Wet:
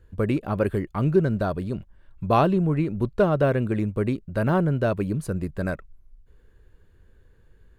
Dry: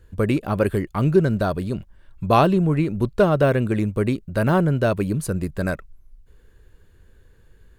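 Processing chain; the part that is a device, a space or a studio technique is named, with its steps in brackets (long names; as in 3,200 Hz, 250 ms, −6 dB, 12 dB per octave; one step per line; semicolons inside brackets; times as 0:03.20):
behind a face mask (high-shelf EQ 3,400 Hz −7.5 dB)
level −3 dB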